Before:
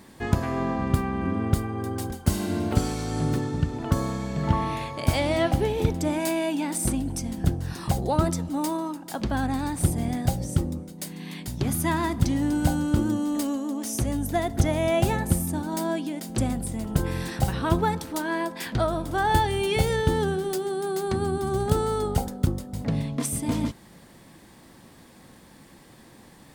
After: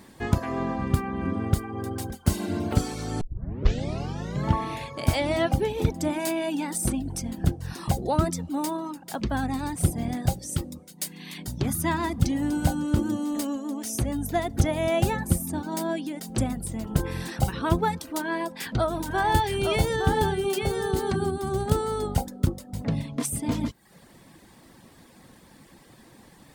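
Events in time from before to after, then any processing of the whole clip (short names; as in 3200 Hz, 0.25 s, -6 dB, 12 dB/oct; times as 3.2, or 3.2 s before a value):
3.21 tape start 1.26 s
10.39–11.38 tilt shelf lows -5 dB, about 1500 Hz
18.03–21.31 echo 0.865 s -5 dB
whole clip: reverb removal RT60 0.57 s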